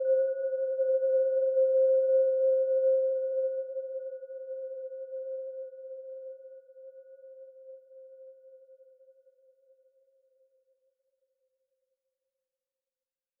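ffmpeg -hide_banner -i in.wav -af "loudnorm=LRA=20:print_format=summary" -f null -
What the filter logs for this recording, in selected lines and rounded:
Input Integrated:    -28.5 LUFS
Input True Peak:     -18.5 dBTP
Input LRA:            17.2 LU
Input Threshold:     -41.4 LUFS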